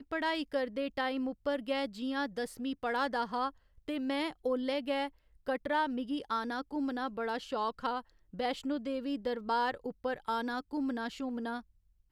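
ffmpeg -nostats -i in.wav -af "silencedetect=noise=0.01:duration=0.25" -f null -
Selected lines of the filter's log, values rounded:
silence_start: 3.50
silence_end: 3.88 | silence_duration: 0.38
silence_start: 5.08
silence_end: 5.48 | silence_duration: 0.40
silence_start: 8.00
silence_end: 8.34 | silence_duration: 0.34
silence_start: 11.60
silence_end: 12.12 | silence_duration: 0.52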